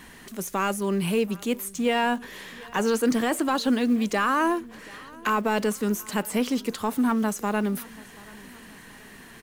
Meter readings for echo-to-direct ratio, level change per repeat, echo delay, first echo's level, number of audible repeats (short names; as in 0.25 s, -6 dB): -22.0 dB, -6.0 dB, 0.731 s, -23.0 dB, 3